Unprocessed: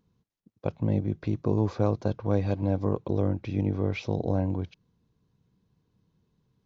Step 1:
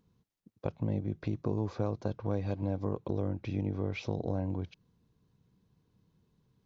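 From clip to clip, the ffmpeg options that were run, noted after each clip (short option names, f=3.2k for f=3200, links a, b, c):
-af "acompressor=threshold=-33dB:ratio=2"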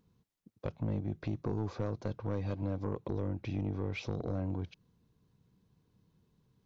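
-af "asoftclip=type=tanh:threshold=-25.5dB"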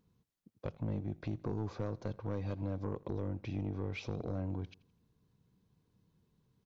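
-af "aecho=1:1:83|166|249:0.075|0.0285|0.0108,volume=-2.5dB"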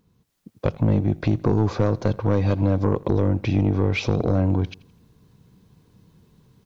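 -af "dynaudnorm=f=190:g=3:m=8.5dB,volume=9dB"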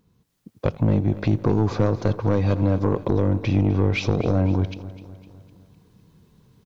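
-af "aecho=1:1:253|506|759|1012|1265:0.158|0.0808|0.0412|0.021|0.0107"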